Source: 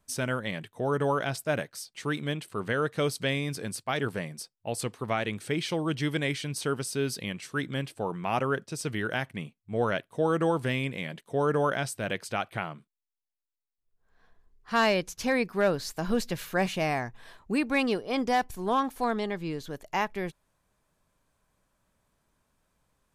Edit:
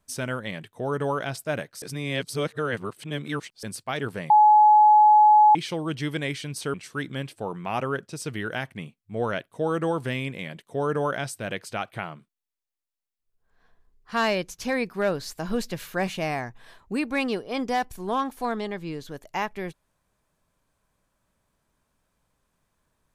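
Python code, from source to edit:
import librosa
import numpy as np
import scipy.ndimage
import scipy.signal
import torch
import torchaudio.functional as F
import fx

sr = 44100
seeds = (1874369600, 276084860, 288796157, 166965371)

y = fx.edit(x, sr, fx.reverse_span(start_s=1.82, length_s=1.81),
    fx.bleep(start_s=4.3, length_s=1.25, hz=848.0, db=-11.5),
    fx.cut(start_s=6.74, length_s=0.59), tone=tone)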